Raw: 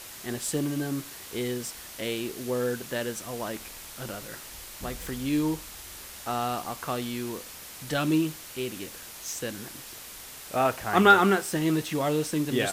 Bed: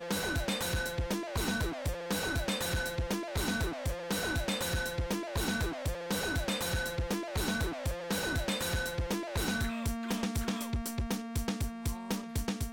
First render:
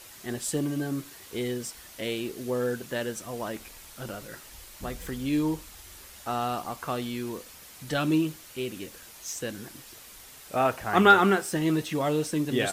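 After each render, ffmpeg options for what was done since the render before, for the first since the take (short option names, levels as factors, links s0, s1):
-af "afftdn=nr=6:nf=-44"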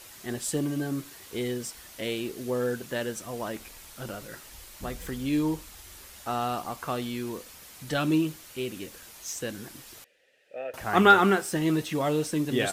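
-filter_complex "[0:a]asettb=1/sr,asplit=3[s0][s1][s2];[s0]atrim=end=10.044[s3];[s1]atrim=start=10.04:end=10.74,asetpts=PTS-STARTPTS,afade=t=in:d=0.004:c=qsin,afade=t=out:st=0.696:d=0.004:c=qsin,asplit=3[s4][s5][s6];[s4]bandpass=f=530:t=q:w=8,volume=1[s7];[s5]bandpass=f=1840:t=q:w=8,volume=0.501[s8];[s6]bandpass=f=2480:t=q:w=8,volume=0.355[s9];[s7][s8][s9]amix=inputs=3:normalize=0[s10];[s2]atrim=start=10.736[s11];[s3][s10]acrossfade=d=0.004:c1=hsin:c2=qsin[s12];[s12][s11]acrossfade=d=0.004:c1=qsin:c2=hsin"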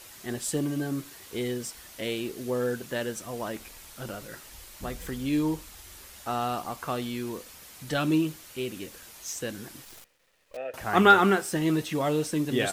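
-filter_complex "[0:a]asettb=1/sr,asplit=3[s0][s1][s2];[s0]atrim=end=9.854[s3];[s1]atrim=start=9.85:end=10.57,asetpts=PTS-STARTPTS,afade=t=in:d=0.004:c=qsin,afade=t=out:st=0.716:d=0.004:c=qsin,acrusher=bits=8:dc=4:mix=0:aa=0.000001[s4];[s2]atrim=start=10.566[s5];[s3][s4]acrossfade=d=0.004:c1=hsin:c2=qsin[s6];[s6][s5]acrossfade=d=0.004:c1=qsin:c2=hsin"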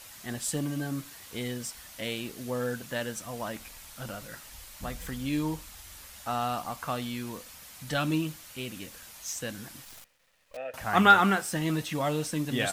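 -af "equalizer=f=380:t=o:w=0.57:g=-10"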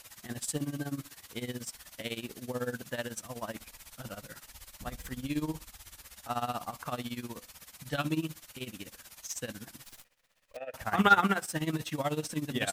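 -af "volume=2.99,asoftclip=hard,volume=0.335,tremolo=f=16:d=0.84"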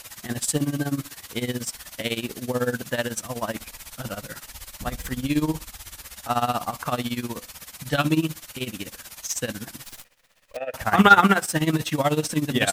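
-af "volume=3.16,alimiter=limit=0.794:level=0:latency=1"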